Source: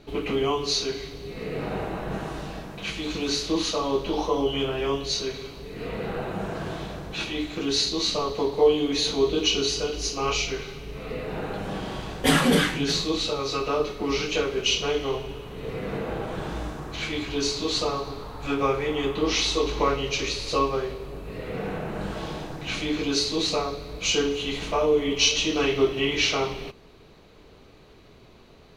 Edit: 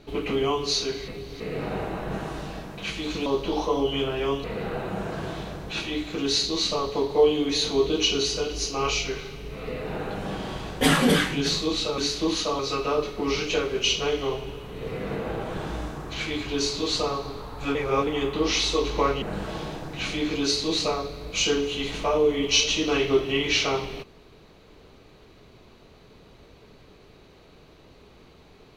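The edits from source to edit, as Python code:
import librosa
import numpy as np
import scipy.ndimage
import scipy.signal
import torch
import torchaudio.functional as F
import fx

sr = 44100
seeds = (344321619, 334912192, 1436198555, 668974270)

y = fx.edit(x, sr, fx.reverse_span(start_s=1.08, length_s=0.32),
    fx.move(start_s=3.26, length_s=0.61, to_s=13.41),
    fx.cut(start_s=5.05, length_s=0.82),
    fx.reverse_span(start_s=18.57, length_s=0.32),
    fx.cut(start_s=20.04, length_s=1.86), tone=tone)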